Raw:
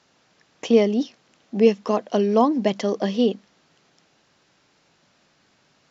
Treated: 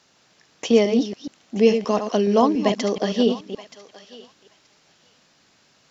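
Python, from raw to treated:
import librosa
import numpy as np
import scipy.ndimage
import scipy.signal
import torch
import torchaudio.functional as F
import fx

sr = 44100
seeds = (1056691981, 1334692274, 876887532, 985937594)

y = fx.reverse_delay(x, sr, ms=142, wet_db=-7.5)
y = fx.high_shelf(y, sr, hz=3500.0, db=7.0)
y = fx.echo_thinned(y, sr, ms=926, feedback_pct=16, hz=1100.0, wet_db=-15.0)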